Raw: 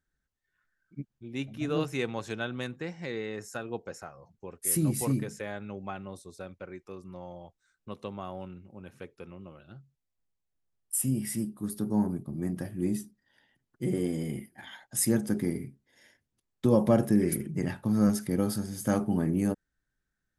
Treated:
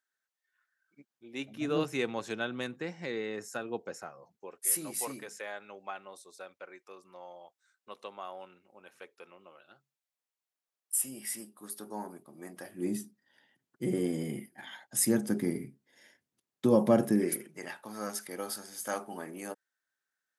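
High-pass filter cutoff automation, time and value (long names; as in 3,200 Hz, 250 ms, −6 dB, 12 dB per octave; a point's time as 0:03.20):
0:00.99 710 Hz
0:01.68 190 Hz
0:04.09 190 Hz
0:04.67 610 Hz
0:12.60 610 Hz
0:13.01 180 Hz
0:17.08 180 Hz
0:17.51 670 Hz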